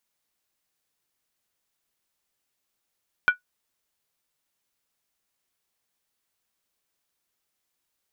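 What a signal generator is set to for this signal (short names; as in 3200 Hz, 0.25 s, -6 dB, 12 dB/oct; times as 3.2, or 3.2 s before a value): skin hit, lowest mode 1470 Hz, decay 0.12 s, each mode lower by 11 dB, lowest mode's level -10 dB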